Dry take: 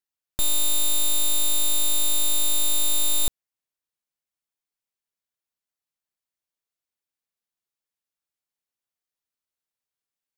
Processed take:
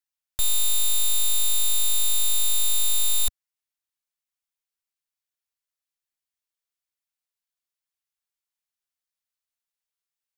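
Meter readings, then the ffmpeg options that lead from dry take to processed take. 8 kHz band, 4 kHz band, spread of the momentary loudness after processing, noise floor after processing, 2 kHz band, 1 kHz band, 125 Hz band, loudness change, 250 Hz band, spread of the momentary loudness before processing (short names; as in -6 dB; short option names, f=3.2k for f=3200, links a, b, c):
0.0 dB, -0.5 dB, 3 LU, under -85 dBFS, -1.0 dB, -4.0 dB, n/a, 0.0 dB, under -10 dB, 3 LU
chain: -af "equalizer=f=260:w=0.52:g=-14.5"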